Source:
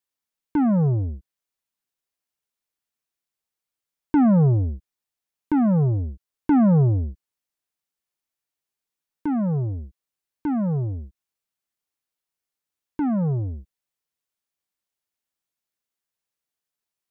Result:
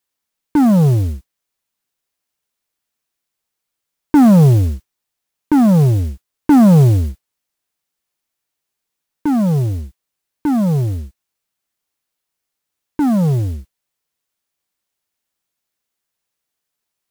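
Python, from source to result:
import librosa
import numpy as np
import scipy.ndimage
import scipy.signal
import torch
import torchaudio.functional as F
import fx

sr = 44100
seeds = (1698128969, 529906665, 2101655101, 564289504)

y = fx.mod_noise(x, sr, seeds[0], snr_db=26)
y = fx.doppler_dist(y, sr, depth_ms=0.12)
y = y * librosa.db_to_amplitude(8.0)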